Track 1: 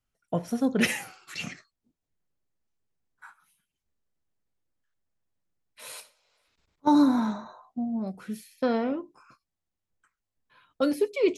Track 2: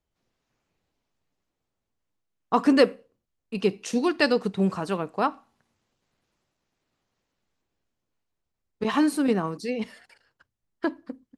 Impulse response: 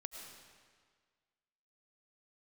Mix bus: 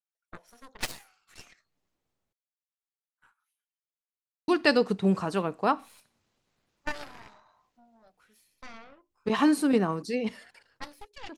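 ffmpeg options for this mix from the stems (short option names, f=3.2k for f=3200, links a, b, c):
-filter_complex "[0:a]highpass=690,aeval=exprs='0.266*(cos(1*acos(clip(val(0)/0.266,-1,1)))-cos(1*PI/2))+0.0266*(cos(3*acos(clip(val(0)/0.266,-1,1)))-cos(3*PI/2))+0.119*(cos(4*acos(clip(val(0)/0.266,-1,1)))-cos(4*PI/2))+0.0422*(cos(7*acos(clip(val(0)/0.266,-1,1)))-cos(7*PI/2))':c=same,volume=-7.5dB,asplit=2[a][b];[1:a]adelay=450,volume=-0.5dB,asplit=3[c][d][e];[c]atrim=end=2.33,asetpts=PTS-STARTPTS,afade=t=out:st=2.326:d=0.004:c=hsin[f];[d]atrim=start=2.33:end=4.48,asetpts=PTS-STARTPTS,volume=0[g];[e]atrim=start=4.48,asetpts=PTS-STARTPTS,afade=t=in:d=0.004:c=hsin[h];[f][g][h]concat=n=3:v=0:a=1[i];[b]apad=whole_len=521521[j];[i][j]sidechaincompress=threshold=-57dB:ratio=12:attack=25:release=337[k];[a][k]amix=inputs=2:normalize=0"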